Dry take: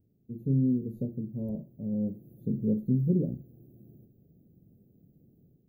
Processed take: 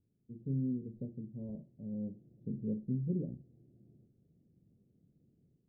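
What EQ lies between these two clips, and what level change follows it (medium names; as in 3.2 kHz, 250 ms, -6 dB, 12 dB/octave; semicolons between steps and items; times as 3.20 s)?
distance through air 460 m; -8.5 dB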